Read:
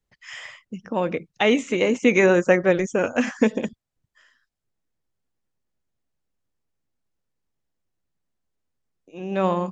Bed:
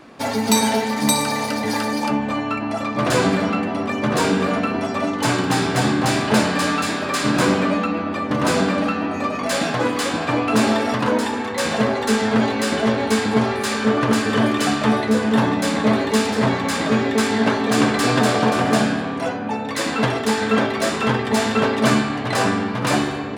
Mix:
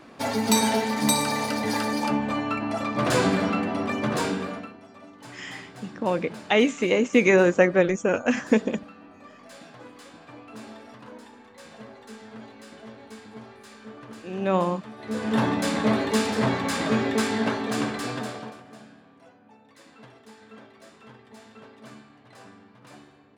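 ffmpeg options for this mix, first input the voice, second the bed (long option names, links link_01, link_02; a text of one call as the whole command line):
ffmpeg -i stem1.wav -i stem2.wav -filter_complex "[0:a]adelay=5100,volume=-1dB[link_01];[1:a]volume=16dB,afade=type=out:start_time=3.92:duration=0.84:silence=0.0891251,afade=type=in:start_time=14.97:duration=0.45:silence=0.1,afade=type=out:start_time=17.12:duration=1.5:silence=0.0595662[link_02];[link_01][link_02]amix=inputs=2:normalize=0" out.wav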